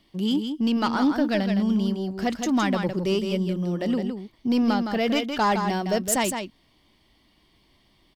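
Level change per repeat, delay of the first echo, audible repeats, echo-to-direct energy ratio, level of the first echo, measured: repeats not evenly spaced, 163 ms, 1, −6.5 dB, −6.5 dB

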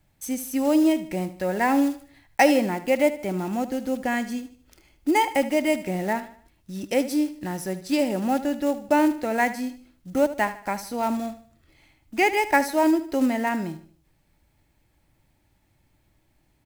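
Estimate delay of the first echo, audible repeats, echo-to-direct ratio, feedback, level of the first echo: 76 ms, 3, −13.0 dB, 40%, −14.0 dB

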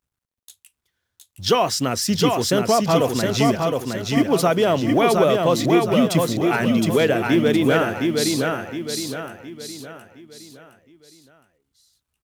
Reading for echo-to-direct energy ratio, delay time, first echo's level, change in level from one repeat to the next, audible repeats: −2.5 dB, 715 ms, −3.5 dB, −7.5 dB, 5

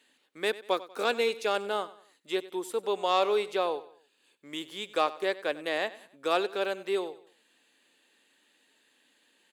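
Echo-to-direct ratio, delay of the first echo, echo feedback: −17.0 dB, 95 ms, 38%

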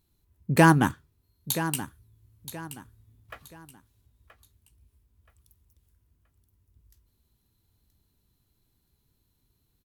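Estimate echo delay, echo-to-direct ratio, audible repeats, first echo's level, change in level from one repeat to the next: 976 ms, −12.0 dB, 3, −12.5 dB, −10.0 dB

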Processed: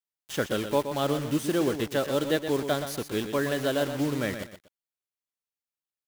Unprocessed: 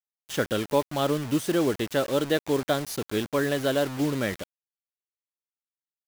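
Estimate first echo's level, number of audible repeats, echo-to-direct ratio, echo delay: −9.0 dB, 2, −9.0 dB, 122 ms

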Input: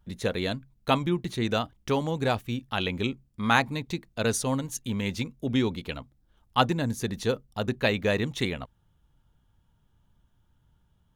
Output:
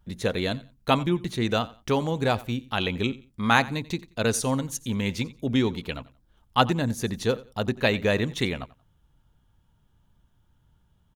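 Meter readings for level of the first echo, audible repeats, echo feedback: −20.0 dB, 2, 24%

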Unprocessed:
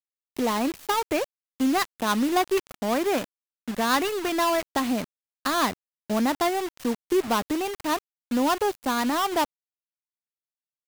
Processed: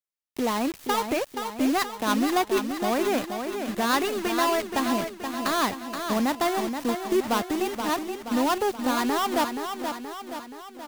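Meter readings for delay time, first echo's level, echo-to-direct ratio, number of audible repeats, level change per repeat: 476 ms, −7.0 dB, −5.5 dB, 5, −5.0 dB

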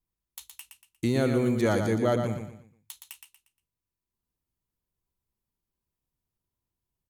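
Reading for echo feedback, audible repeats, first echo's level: 34%, 4, −6.5 dB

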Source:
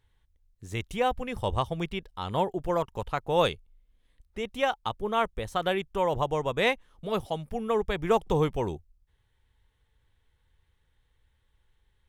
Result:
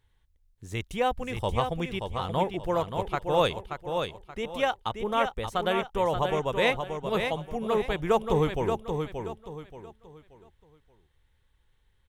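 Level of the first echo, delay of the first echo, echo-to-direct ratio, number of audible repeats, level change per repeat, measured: −6.0 dB, 579 ms, −5.5 dB, 3, −10.0 dB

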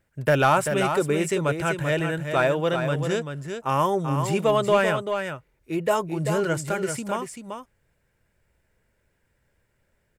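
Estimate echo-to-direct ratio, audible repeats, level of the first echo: −7.0 dB, 1, −7.0 dB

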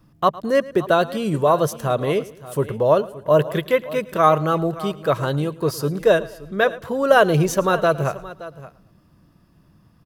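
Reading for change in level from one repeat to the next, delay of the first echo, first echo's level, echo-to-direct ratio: repeats not evenly spaced, 110 ms, −19.5 dB, −14.5 dB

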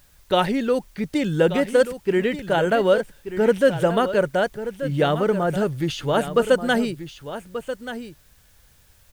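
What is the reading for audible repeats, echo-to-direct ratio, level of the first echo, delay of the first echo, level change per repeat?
1, −11.5 dB, −11.5 dB, 1,183 ms, repeats not evenly spaced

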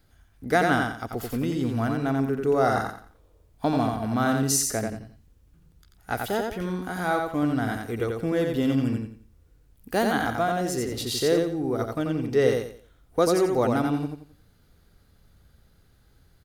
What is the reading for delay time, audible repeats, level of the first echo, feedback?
88 ms, 3, −4.0 dB, 30%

